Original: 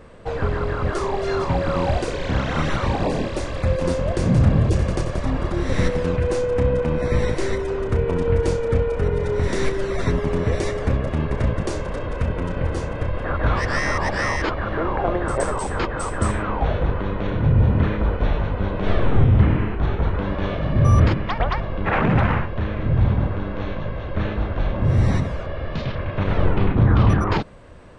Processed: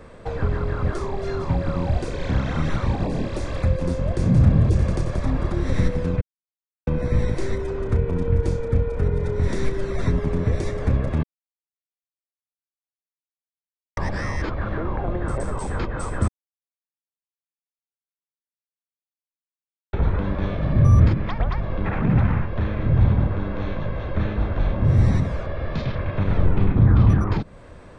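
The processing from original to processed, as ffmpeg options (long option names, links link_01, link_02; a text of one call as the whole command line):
ffmpeg -i in.wav -filter_complex "[0:a]asplit=7[link_01][link_02][link_03][link_04][link_05][link_06][link_07];[link_01]atrim=end=6.21,asetpts=PTS-STARTPTS,afade=type=out:start_time=6.206:duration=0.004:curve=hsin[link_08];[link_02]atrim=start=6.21:end=6.87,asetpts=PTS-STARTPTS,volume=0[link_09];[link_03]atrim=start=6.87:end=11.23,asetpts=PTS-STARTPTS,afade=type=in:duration=0.004:curve=hsin,afade=type=out:start_time=4.356:duration=0.004:curve=hsin[link_10];[link_04]atrim=start=11.23:end=13.97,asetpts=PTS-STARTPTS,volume=0[link_11];[link_05]atrim=start=13.97:end=16.28,asetpts=PTS-STARTPTS,afade=type=in:duration=0.004:curve=hsin,afade=type=out:start_time=2.306:duration=0.004:curve=hsin[link_12];[link_06]atrim=start=16.28:end=19.93,asetpts=PTS-STARTPTS,volume=0[link_13];[link_07]atrim=start=19.93,asetpts=PTS-STARTPTS,afade=type=in:duration=0.004:curve=hsin[link_14];[link_08][link_09][link_10][link_11][link_12][link_13][link_14]concat=n=7:v=0:a=1,bandreject=frequency=2900:width=13,acrossover=split=270[link_15][link_16];[link_16]acompressor=threshold=-31dB:ratio=5[link_17];[link_15][link_17]amix=inputs=2:normalize=0,volume=1dB" out.wav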